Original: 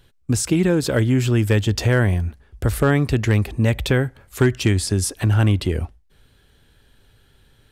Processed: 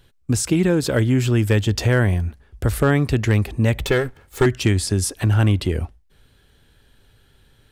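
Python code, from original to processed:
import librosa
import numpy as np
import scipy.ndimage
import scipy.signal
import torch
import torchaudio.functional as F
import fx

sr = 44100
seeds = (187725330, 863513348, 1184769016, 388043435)

y = fx.lower_of_two(x, sr, delay_ms=2.3, at=(3.79, 4.46))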